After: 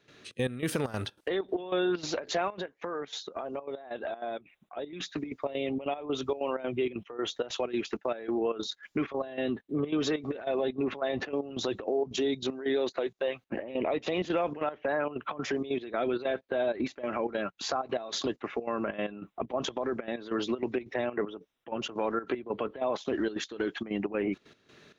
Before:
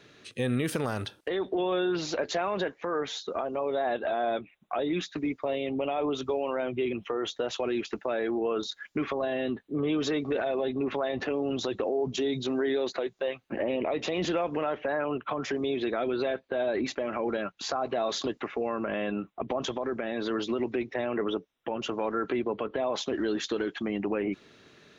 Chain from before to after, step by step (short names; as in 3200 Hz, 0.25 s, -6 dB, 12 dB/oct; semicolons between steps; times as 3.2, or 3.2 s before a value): 2.47–4.93 compressor, threshold -32 dBFS, peak gain reduction 7.5 dB; step gate ".xxx.x..xxx.xx" 192 bpm -12 dB